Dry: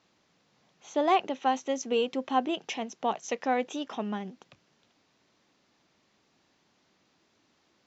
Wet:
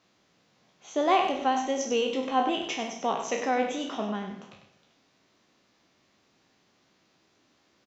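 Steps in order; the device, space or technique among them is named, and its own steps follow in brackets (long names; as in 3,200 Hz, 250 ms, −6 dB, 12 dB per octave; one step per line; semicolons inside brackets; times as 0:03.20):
peak hold with a decay on every bin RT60 0.46 s
notch filter 880 Hz, Q 20
single-tap delay 97 ms −8.5 dB
saturated reverb return (on a send at −13.5 dB: convolution reverb RT60 0.80 s, pre-delay 104 ms + soft clipping −24 dBFS, distortion −10 dB)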